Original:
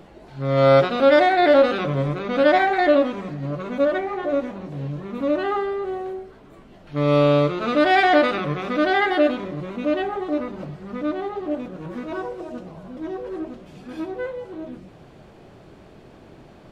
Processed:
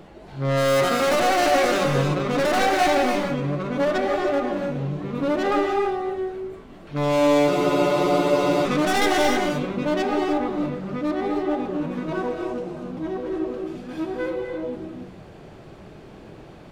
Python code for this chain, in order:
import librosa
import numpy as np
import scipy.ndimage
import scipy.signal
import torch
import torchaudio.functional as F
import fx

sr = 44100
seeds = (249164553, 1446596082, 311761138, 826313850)

y = fx.tracing_dist(x, sr, depth_ms=0.3)
y = np.clip(y, -10.0 ** (-19.5 / 20.0), 10.0 ** (-19.5 / 20.0))
y = fx.rev_gated(y, sr, seeds[0], gate_ms=330, shape='rising', drr_db=2.0)
y = fx.spec_freeze(y, sr, seeds[1], at_s=7.52, hold_s=1.14)
y = y * librosa.db_to_amplitude(1.0)